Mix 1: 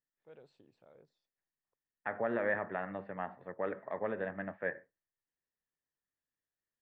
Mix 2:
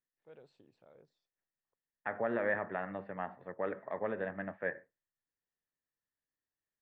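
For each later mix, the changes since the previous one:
none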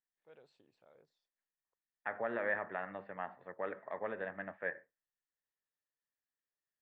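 master: add low shelf 460 Hz -9 dB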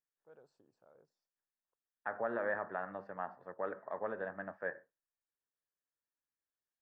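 second voice: remove air absorption 310 m; master: add band shelf 2800 Hz -15 dB 1.3 oct

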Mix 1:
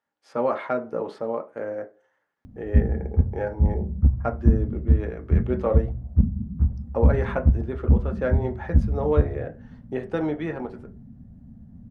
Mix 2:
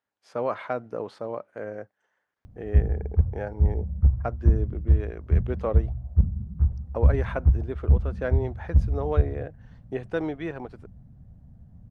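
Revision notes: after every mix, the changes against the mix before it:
background: add bell 240 Hz -15 dB 0.68 oct; reverb: off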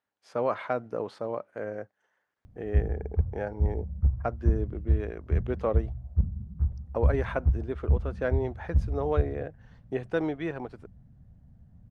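background -5.0 dB

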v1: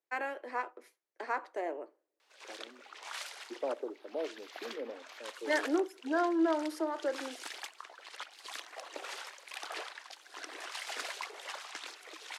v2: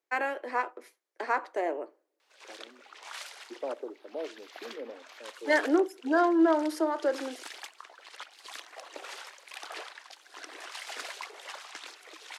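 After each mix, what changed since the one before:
first voice +6.0 dB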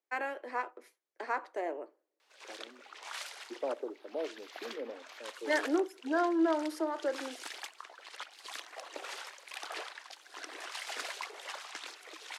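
first voice -5.5 dB

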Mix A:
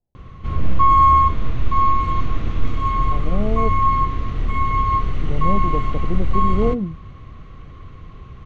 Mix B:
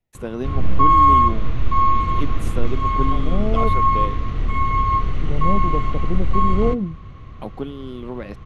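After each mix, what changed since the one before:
first voice: unmuted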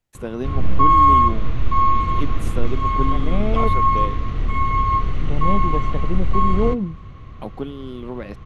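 second voice: remove steep low-pass 850 Hz

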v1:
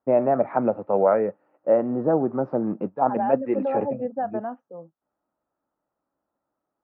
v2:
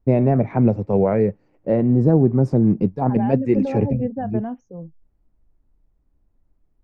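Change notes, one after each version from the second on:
master: remove speaker cabinet 390–2500 Hz, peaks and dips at 410 Hz -5 dB, 590 Hz +5 dB, 850 Hz +4 dB, 1300 Hz +9 dB, 2200 Hz -8 dB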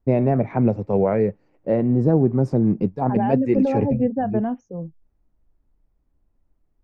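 first voice: add low shelf 320 Hz -3.5 dB; second voice +4.0 dB

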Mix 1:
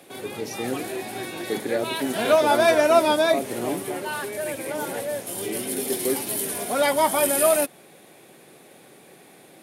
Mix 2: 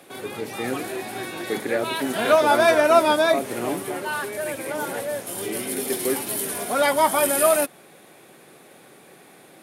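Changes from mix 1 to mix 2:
speech: add synth low-pass 2700 Hz, resonance Q 2.9; master: add bell 1300 Hz +4.5 dB 0.88 oct

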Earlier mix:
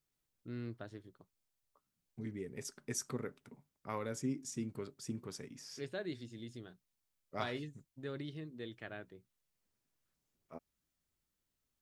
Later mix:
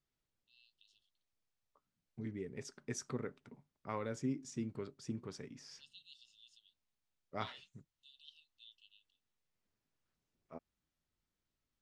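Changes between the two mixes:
first voice: add brick-wall FIR high-pass 2600 Hz; master: add air absorption 83 m

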